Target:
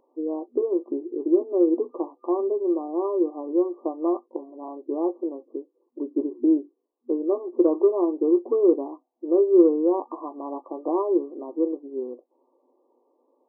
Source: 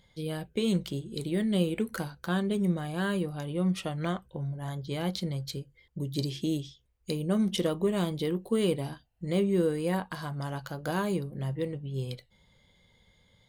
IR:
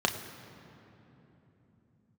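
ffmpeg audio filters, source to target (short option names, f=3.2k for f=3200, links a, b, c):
-af "equalizer=f=350:w=3.8:g=11,afftfilt=real='re*between(b*sr/4096,240,1200)':imag='im*between(b*sr/4096,240,1200)':win_size=4096:overlap=0.75,acontrast=21"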